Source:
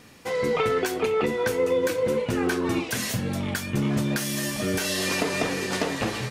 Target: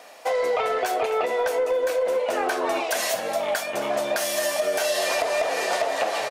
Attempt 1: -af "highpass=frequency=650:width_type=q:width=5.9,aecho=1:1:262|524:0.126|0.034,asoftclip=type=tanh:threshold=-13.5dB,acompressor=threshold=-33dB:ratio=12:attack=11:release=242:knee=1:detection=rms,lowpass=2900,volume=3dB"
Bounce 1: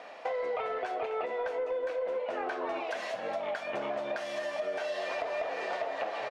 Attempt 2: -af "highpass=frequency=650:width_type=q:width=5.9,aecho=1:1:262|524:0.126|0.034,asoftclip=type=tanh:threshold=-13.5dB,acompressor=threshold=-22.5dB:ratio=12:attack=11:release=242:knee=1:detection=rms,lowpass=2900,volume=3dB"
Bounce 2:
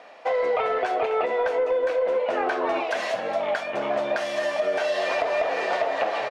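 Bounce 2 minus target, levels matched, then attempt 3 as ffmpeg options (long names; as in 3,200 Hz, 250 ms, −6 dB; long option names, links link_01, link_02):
4,000 Hz band −5.0 dB
-af "highpass=frequency=650:width_type=q:width=5.9,aecho=1:1:262|524:0.126|0.034,asoftclip=type=tanh:threshold=-13.5dB,acompressor=threshold=-22.5dB:ratio=12:attack=11:release=242:knee=1:detection=rms,volume=3dB"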